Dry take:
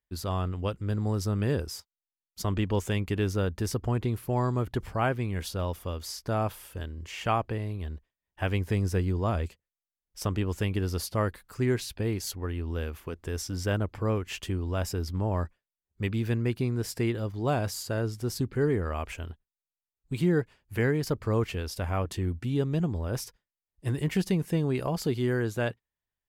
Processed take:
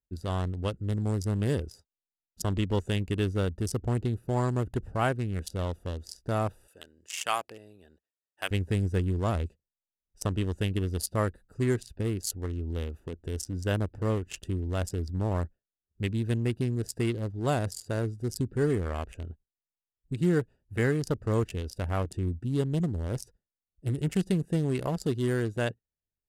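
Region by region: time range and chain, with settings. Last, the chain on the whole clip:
6.68–8.51 HPF 630 Hz 6 dB/oct + tilt +3 dB/oct
whole clip: Wiener smoothing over 41 samples; bell 8700 Hz +14 dB 1.4 oct; notch 2400 Hz, Q 15

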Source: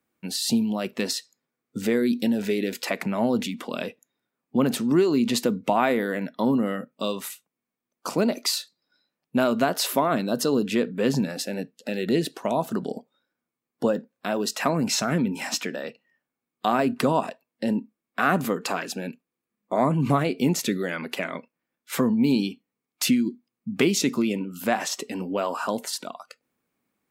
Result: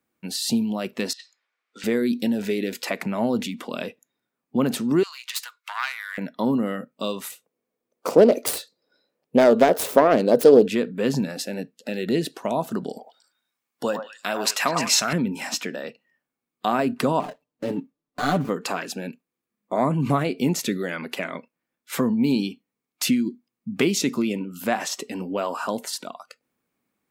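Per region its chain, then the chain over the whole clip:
1.13–1.84 BPF 570–2800 Hz + tilt shelf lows -10 dB, about 1100 Hz + negative-ratio compressor -39 dBFS, ratio -0.5
5.03–6.18 self-modulated delay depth 0.11 ms + steep high-pass 1100 Hz
7.31–10.68 self-modulated delay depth 0.26 ms + bell 480 Hz +14.5 dB 1 oct
12.89–15.13 tilt shelf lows -6.5 dB, about 750 Hz + delay with a stepping band-pass 0.102 s, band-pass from 910 Hz, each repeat 1.4 oct, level -1.5 dB
17.2–18.49 median filter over 25 samples + de-esser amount 35% + comb 6.8 ms, depth 84%
whole clip: dry

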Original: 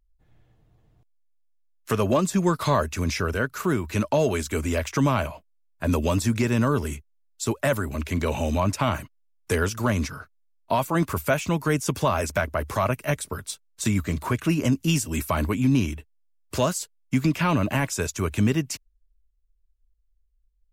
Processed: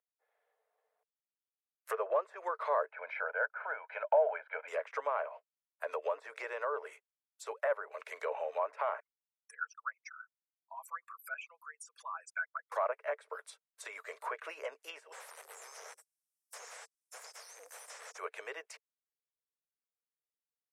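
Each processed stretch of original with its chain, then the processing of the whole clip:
2.91–4.68 LPF 2600 Hz 24 dB/oct + comb 1.3 ms, depth 97%
9–12.72 formant sharpening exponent 3 + HPF 1400 Hz 24 dB/oct + comb 6 ms, depth 51%
15.12–18.18 Chebyshev band-stop 110–5300 Hz, order 5 + overdrive pedal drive 35 dB, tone 2600 Hz, clips at -18.5 dBFS
whole clip: Chebyshev high-pass 450 Hz, order 6; treble ducked by the level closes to 1600 Hz, closed at -25 dBFS; band shelf 4400 Hz -8.5 dB; gain -7 dB

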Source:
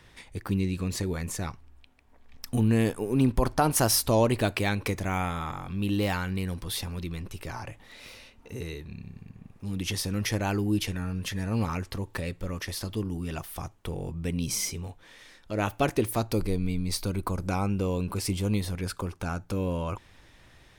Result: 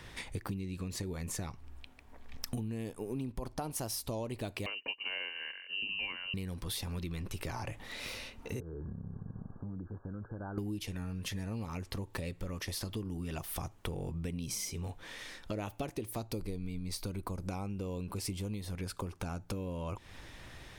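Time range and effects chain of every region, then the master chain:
4.66–6.34 comb 1.6 ms, depth 44% + inverted band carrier 2900 Hz + upward expander 2.5:1, over -37 dBFS
8.6–10.58 compressor 10:1, threshold -42 dBFS + brick-wall FIR low-pass 1700 Hz
whole clip: dynamic EQ 1500 Hz, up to -6 dB, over -46 dBFS, Q 1.8; compressor 10:1, threshold -40 dBFS; gain +5 dB

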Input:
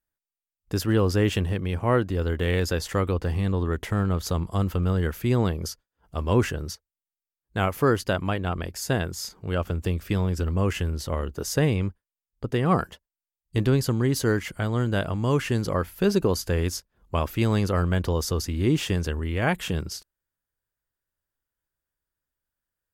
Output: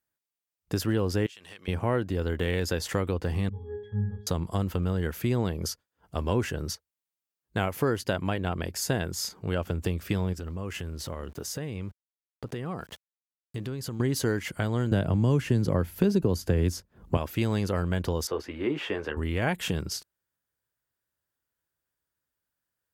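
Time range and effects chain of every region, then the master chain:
1.26–1.68 band-pass 5100 Hz, Q 0.66 + compressor 16:1, threshold -42 dBFS
3.49–4.27 low shelf 84 Hz +10.5 dB + octave resonator G#, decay 0.61 s
10.33–14 sample gate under -48.5 dBFS + compressor 5:1, threshold -34 dBFS
14.91–17.17 low shelf 400 Hz +11 dB + three-band squash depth 40%
18.27–19.17 three-band isolator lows -19 dB, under 310 Hz, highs -24 dB, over 2800 Hz + doubler 14 ms -6 dB
whole clip: HPF 77 Hz; dynamic EQ 1200 Hz, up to -5 dB, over -46 dBFS, Q 5.4; compressor 2.5:1, threshold -27 dBFS; gain +2 dB

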